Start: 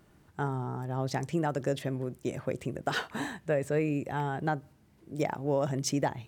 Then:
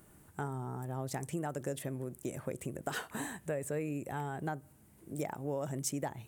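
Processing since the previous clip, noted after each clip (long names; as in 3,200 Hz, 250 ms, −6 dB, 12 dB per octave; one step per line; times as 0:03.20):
high shelf with overshoot 6,800 Hz +11 dB, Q 1.5
downward compressor 2 to 1, threshold −39 dBFS, peak gain reduction 9 dB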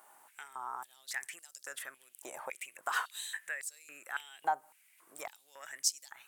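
high-pass on a step sequencer 3.6 Hz 860–4,800 Hz
level +1 dB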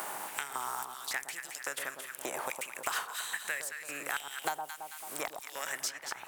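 compressing power law on the bin magnitudes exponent 0.69
delay that swaps between a low-pass and a high-pass 110 ms, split 1,100 Hz, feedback 50%, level −5 dB
multiband upward and downward compressor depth 100%
level +3 dB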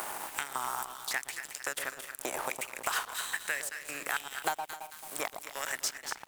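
leveller curve on the samples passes 1
dead-zone distortion −43.5 dBFS
single-tap delay 257 ms −15 dB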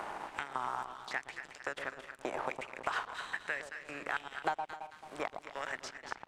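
head-to-tape spacing loss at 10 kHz 27 dB
level +1.5 dB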